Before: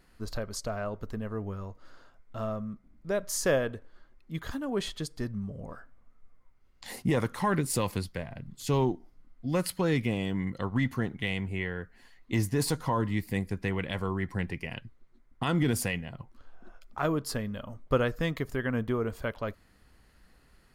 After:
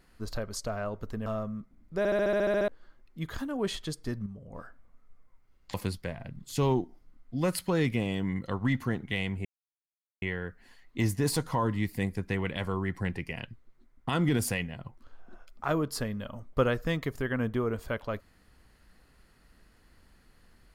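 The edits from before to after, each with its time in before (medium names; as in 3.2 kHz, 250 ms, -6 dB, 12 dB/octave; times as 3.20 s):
1.26–2.39 s: delete
3.11 s: stutter in place 0.07 s, 10 plays
5.39–5.66 s: gain -7 dB
6.87–7.85 s: delete
11.56 s: insert silence 0.77 s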